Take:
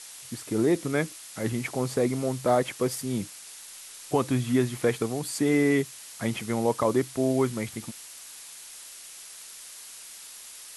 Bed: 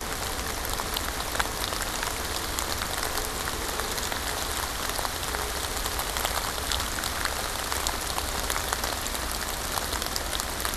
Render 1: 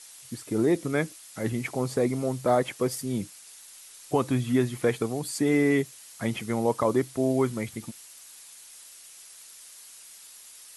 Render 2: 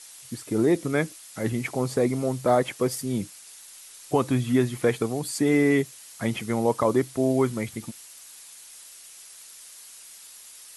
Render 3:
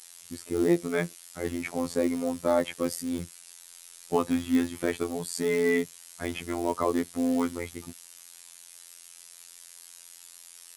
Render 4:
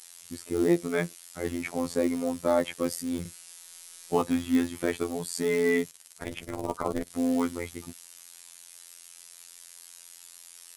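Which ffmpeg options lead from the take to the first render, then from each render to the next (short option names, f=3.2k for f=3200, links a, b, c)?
-af "afftdn=nr=6:nf=-45"
-af "volume=2dB"
-filter_complex "[0:a]acrossover=split=500[a][b];[a]acrusher=bits=5:mode=log:mix=0:aa=0.000001[c];[c][b]amix=inputs=2:normalize=0,afftfilt=real='hypot(re,im)*cos(PI*b)':imag='0':win_size=2048:overlap=0.75"
-filter_complex "[0:a]asettb=1/sr,asplit=3[a][b][c];[a]atrim=end=3.214[d];[b]atrim=start=3.21:end=4.22,asetpts=PTS-STARTPTS,afade=t=in:d=0.004:c=qsin,afade=t=out:st=1.006:d=0.004:c=qsin,asplit=2[e][f];[f]adelay=41,volume=-5dB[g];[e][g]amix=inputs=2:normalize=0,atrim=end_sample=44541[h];[c]atrim=start=4.216[i];[d][h]acrossfade=d=0.004:c1=hsin:c2=qsin[j];[j][i]acrossfade=d=0.004:c1=qsin:c2=hsin,asettb=1/sr,asplit=3[k][l][m];[k]atrim=end=5.914[n];[l]atrim=start=5.91:end=7.1,asetpts=PTS-STARTPTS,afade=t=in:d=0.004:c=qsin,afade=t=out:st=1.186:d=0.004:c=qsin,tremolo=f=240:d=0.947[o];[m]atrim=start=7.096[p];[n][o]acrossfade=d=0.004:c1=hsin:c2=qsin[q];[q][p]acrossfade=d=0.004:c1=qsin:c2=hsin"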